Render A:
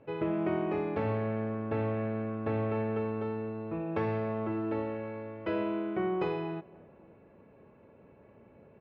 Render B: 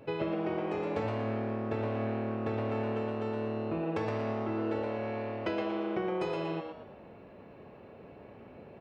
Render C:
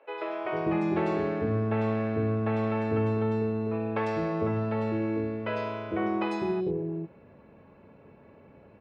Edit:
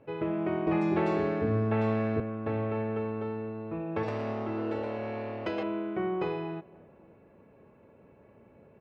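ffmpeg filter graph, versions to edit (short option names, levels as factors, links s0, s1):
-filter_complex "[0:a]asplit=3[s0][s1][s2];[s0]atrim=end=0.672[s3];[2:a]atrim=start=0.668:end=2.202[s4];[s1]atrim=start=2.198:end=4.032[s5];[1:a]atrim=start=4.028:end=5.632[s6];[s2]atrim=start=5.628[s7];[s3][s4]acrossfade=d=0.004:c1=hsin:c2=hsin[s8];[s8][s5]acrossfade=d=0.004:c1=hsin:c2=hsin[s9];[s9][s6]acrossfade=d=0.004:c1=hsin:c2=hsin[s10];[s10][s7]acrossfade=d=0.004:c1=hsin:c2=hsin"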